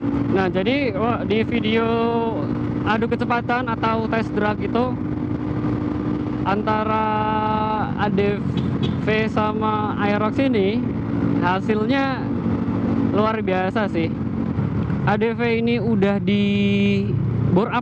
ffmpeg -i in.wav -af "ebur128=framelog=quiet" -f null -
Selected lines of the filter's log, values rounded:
Integrated loudness:
  I:         -20.7 LUFS
  Threshold: -30.7 LUFS
Loudness range:
  LRA:         1.9 LU
  Threshold: -40.9 LUFS
  LRA low:   -22.0 LUFS
  LRA high:  -20.0 LUFS